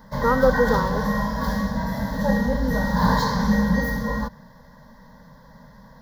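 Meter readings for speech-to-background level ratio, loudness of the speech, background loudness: 1.0 dB, −22.5 LKFS, −23.5 LKFS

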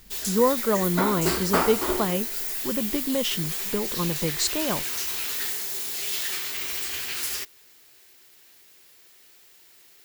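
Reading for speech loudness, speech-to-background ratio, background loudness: −27.0 LKFS, −0.5 dB, −26.5 LKFS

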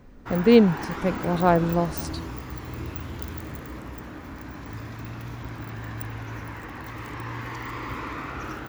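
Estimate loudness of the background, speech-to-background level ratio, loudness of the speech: −35.0 LKFS, 13.5 dB, −21.5 LKFS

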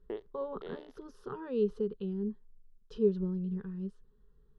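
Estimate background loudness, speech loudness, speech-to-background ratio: −47.0 LKFS, −35.0 LKFS, 12.0 dB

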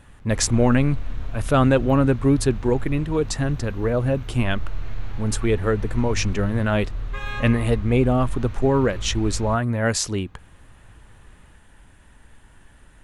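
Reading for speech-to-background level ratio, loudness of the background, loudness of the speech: 12.0 dB, −34.0 LKFS, −22.0 LKFS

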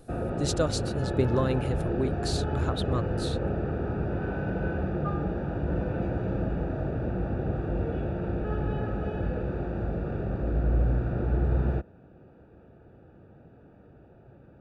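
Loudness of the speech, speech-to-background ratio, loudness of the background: −31.5 LKFS, −1.5 dB, −30.0 LKFS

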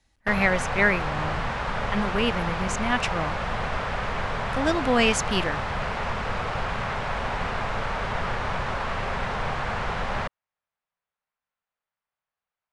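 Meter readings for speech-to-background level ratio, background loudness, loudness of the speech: 3.5 dB, −29.0 LKFS, −25.5 LKFS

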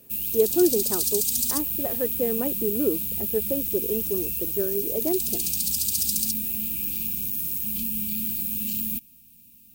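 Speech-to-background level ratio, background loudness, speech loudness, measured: −3.5 dB, −24.5 LKFS, −28.0 LKFS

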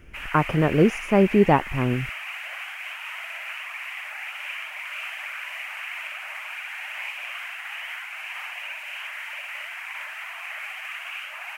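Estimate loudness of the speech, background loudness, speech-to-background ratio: −21.5 LKFS, −33.0 LKFS, 11.5 dB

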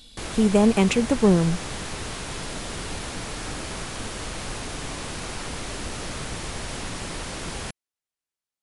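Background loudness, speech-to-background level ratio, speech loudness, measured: −32.5 LKFS, 11.5 dB, −21.0 LKFS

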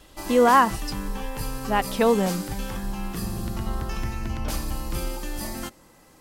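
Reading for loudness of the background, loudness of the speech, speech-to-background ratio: −32.0 LKFS, −21.5 LKFS, 10.5 dB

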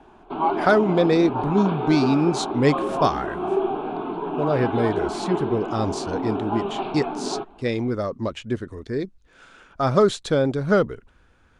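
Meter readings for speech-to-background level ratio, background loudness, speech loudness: 4.5 dB, −27.5 LKFS, −23.0 LKFS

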